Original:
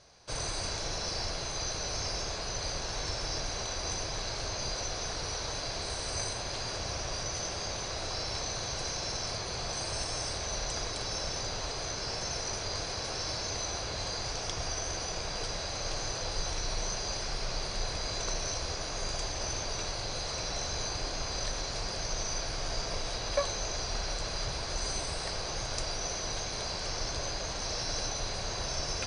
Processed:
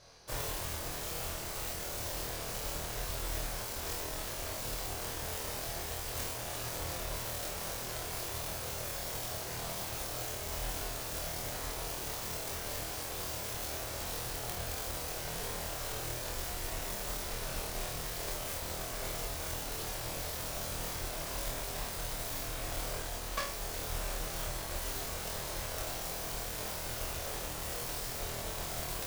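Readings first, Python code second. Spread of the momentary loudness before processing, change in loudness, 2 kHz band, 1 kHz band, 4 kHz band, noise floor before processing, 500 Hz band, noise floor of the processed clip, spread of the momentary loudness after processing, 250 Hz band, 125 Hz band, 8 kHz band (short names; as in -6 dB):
2 LU, -3.0 dB, -3.0 dB, -3.5 dB, -8.0 dB, -37 dBFS, -4.0 dB, -40 dBFS, 1 LU, -2.5 dB, -3.0 dB, -4.5 dB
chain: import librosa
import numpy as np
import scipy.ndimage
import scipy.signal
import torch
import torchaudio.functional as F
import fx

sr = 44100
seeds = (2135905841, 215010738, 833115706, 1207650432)

p1 = fx.self_delay(x, sr, depth_ms=0.93)
p2 = fx.rider(p1, sr, range_db=10, speed_s=0.5)
p3 = p2 + fx.room_flutter(p2, sr, wall_m=4.3, rt60_s=0.43, dry=0)
y = F.gain(torch.from_numpy(p3), -5.0).numpy()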